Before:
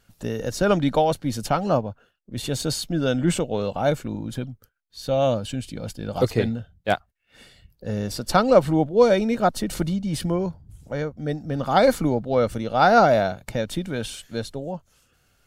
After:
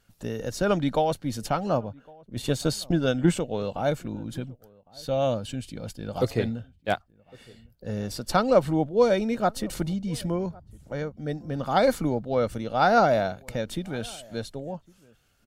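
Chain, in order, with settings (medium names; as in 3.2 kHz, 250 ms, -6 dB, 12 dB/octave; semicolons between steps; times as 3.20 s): 2.36–3.37 s: transient shaper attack +10 dB, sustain -2 dB; echo from a far wall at 190 m, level -25 dB; trim -4 dB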